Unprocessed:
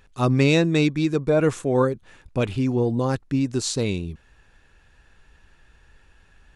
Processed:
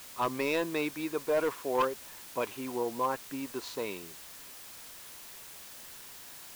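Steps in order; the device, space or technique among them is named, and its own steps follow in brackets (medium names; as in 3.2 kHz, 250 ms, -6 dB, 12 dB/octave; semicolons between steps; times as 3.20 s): drive-through speaker (band-pass 450–2800 Hz; peaking EQ 1 kHz +11.5 dB 0.28 oct; hard clipper -16 dBFS, distortion -14 dB; white noise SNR 13 dB); trim -6 dB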